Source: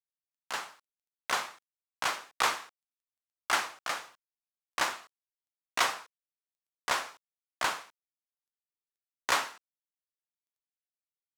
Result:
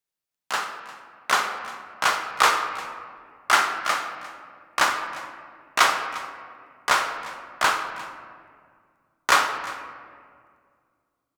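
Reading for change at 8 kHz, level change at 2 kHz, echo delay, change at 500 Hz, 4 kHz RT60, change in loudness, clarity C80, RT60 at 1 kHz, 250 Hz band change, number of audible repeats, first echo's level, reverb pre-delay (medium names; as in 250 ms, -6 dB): +7.0 dB, +10.0 dB, 351 ms, +9.0 dB, 1.1 s, +8.5 dB, 8.5 dB, 1.9 s, +9.0 dB, 1, -19.0 dB, 5 ms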